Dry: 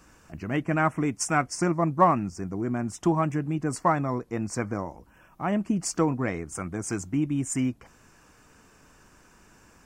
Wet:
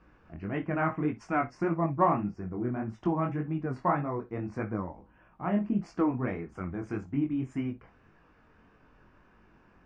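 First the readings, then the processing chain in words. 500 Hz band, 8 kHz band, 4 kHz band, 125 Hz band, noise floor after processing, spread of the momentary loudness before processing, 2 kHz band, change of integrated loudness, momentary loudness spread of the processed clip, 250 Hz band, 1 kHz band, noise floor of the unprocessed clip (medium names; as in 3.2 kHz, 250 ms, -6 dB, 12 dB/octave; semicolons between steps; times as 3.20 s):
-4.0 dB, under -30 dB, under -15 dB, -4.0 dB, -62 dBFS, 9 LU, -6.0 dB, -4.5 dB, 9 LU, -3.5 dB, -4.5 dB, -58 dBFS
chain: treble shelf 8.8 kHz -9.5 dB; chorus 1.7 Hz, delay 18 ms, depth 6.7 ms; distance through air 330 m; gated-style reverb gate 80 ms flat, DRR 11.5 dB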